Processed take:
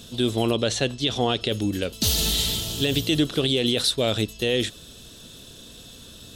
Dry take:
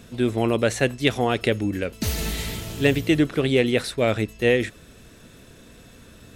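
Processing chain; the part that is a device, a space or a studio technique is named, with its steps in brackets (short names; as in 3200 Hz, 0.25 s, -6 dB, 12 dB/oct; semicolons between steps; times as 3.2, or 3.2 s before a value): 0.51–1.49 air absorption 69 m; over-bright horn tweeter (resonant high shelf 2700 Hz +7 dB, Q 3; limiter -10.5 dBFS, peak gain reduction 11.5 dB)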